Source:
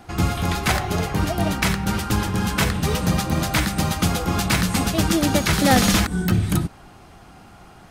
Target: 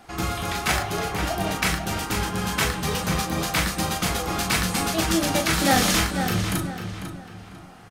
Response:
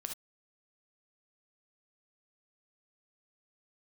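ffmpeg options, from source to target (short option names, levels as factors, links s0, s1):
-filter_complex "[0:a]lowshelf=f=340:g=-8,asplit=2[s0][s1];[s1]adelay=497,lowpass=f=4600:p=1,volume=0.398,asplit=2[s2][s3];[s3]adelay=497,lowpass=f=4600:p=1,volume=0.35,asplit=2[s4][s5];[s5]adelay=497,lowpass=f=4600:p=1,volume=0.35,asplit=2[s6][s7];[s7]adelay=497,lowpass=f=4600:p=1,volume=0.35[s8];[s0][s2][s4][s6][s8]amix=inputs=5:normalize=0[s9];[1:a]atrim=start_sample=2205,asetrate=79380,aresample=44100[s10];[s9][s10]afir=irnorm=-1:irlink=0,volume=2"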